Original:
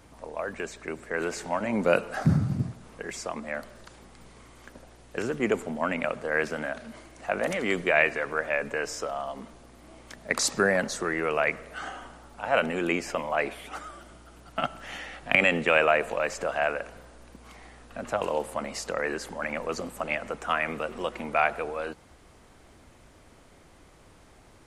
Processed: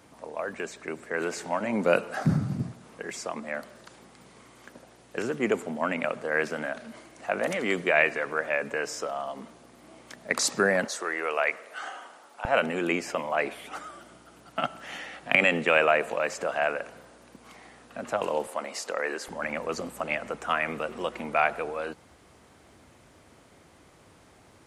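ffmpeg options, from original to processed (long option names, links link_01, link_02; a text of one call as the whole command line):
ffmpeg -i in.wav -af "asetnsamples=nb_out_samples=441:pad=0,asendcmd='10.85 highpass f 480;12.45 highpass f 130;18.47 highpass f 340;19.28 highpass f 80',highpass=130" out.wav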